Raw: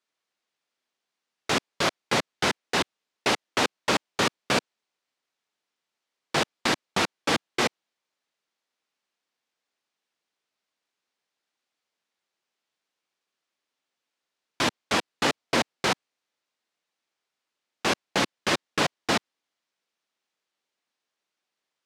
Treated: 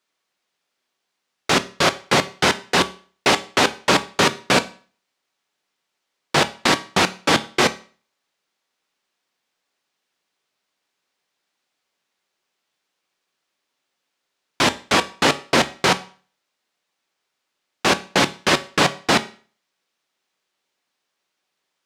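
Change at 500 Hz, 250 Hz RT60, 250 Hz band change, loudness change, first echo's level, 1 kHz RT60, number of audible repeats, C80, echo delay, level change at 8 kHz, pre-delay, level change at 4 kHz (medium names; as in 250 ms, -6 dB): +7.5 dB, 0.40 s, +7.0 dB, +7.5 dB, no echo, 0.45 s, no echo, 22.0 dB, no echo, +7.5 dB, 5 ms, +7.5 dB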